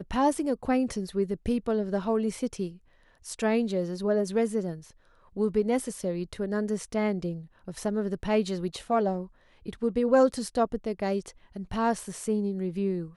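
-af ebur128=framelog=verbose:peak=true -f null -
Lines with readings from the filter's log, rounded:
Integrated loudness:
  I:         -28.7 LUFS
  Threshold: -39.2 LUFS
Loudness range:
  LRA:         2.8 LU
  Threshold: -49.2 LUFS
  LRA low:   -30.5 LUFS
  LRA high:  -27.7 LUFS
True peak:
  Peak:      -10.6 dBFS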